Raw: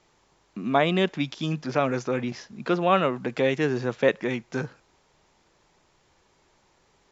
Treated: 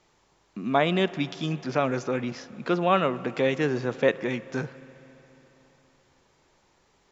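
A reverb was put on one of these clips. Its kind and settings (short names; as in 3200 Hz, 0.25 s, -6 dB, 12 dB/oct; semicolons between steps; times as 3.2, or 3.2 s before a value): spring tank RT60 3.7 s, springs 34/46 ms, chirp 80 ms, DRR 16 dB; gain -1 dB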